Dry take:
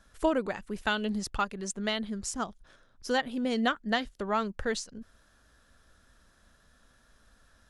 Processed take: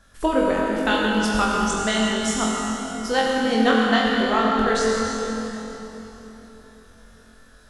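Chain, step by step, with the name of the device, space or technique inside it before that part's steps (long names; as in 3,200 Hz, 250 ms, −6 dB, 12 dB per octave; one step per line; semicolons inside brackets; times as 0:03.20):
tunnel (flutter between parallel walls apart 3.9 metres, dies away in 0.37 s; convolution reverb RT60 3.8 s, pre-delay 70 ms, DRR −1.5 dB)
level +4.5 dB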